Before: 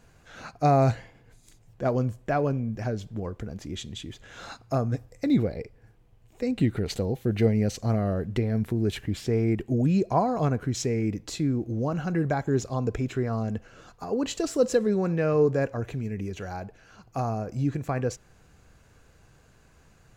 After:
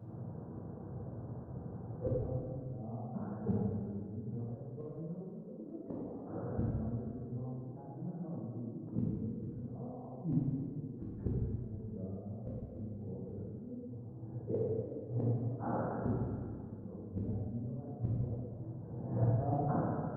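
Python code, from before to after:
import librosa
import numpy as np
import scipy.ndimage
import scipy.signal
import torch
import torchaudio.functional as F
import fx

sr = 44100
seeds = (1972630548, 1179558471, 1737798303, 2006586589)

y = x[::-1].copy()
y = scipy.signal.sosfilt(scipy.signal.butter(4, 94.0, 'highpass', fs=sr, output='sos'), y)
y = fx.peak_eq(y, sr, hz=220.0, db=3.5, octaves=0.24)
y = fx.over_compress(y, sr, threshold_db=-27.0, ratio=-0.5)
y = scipy.ndimage.gaussian_filter1d(y, 11.0, mode='constant')
y = fx.gate_flip(y, sr, shuts_db=-30.0, range_db=-28)
y = fx.rev_plate(y, sr, seeds[0], rt60_s=2.1, hf_ratio=0.75, predelay_ms=0, drr_db=-7.0)
y = y * 10.0 ** (5.5 / 20.0)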